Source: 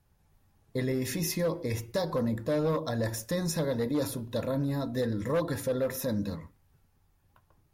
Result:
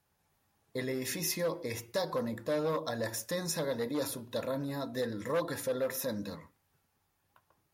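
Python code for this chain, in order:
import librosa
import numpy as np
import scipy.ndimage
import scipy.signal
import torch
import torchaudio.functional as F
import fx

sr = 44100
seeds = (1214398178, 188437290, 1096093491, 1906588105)

y = fx.highpass(x, sr, hz=130.0, slope=6)
y = fx.low_shelf(y, sr, hz=360.0, db=-8.0)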